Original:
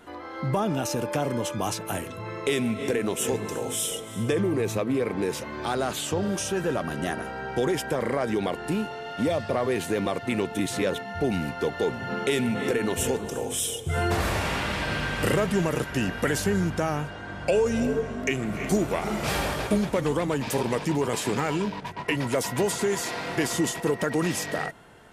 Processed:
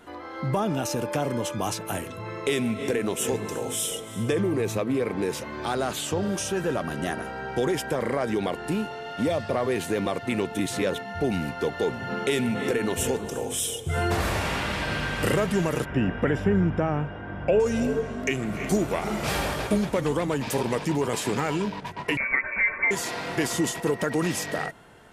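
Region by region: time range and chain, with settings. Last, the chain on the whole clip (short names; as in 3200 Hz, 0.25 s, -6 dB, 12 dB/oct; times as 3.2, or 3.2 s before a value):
15.85–17.6 polynomial smoothing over 25 samples + tilt shelf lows +3.5 dB, about 820 Hz
22.17–22.91 comb 4.4 ms, depth 45% + inverted band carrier 2500 Hz
whole clip: dry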